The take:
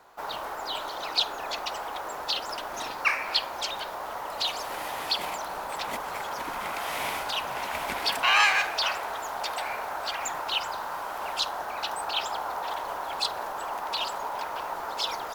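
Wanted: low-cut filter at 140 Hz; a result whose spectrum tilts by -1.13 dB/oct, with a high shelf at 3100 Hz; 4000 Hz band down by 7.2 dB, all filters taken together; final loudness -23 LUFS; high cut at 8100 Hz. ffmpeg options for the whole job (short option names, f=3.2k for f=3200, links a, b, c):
-af "highpass=140,lowpass=8.1k,highshelf=f=3.1k:g=-3,equalizer=f=4k:t=o:g=-7,volume=9dB"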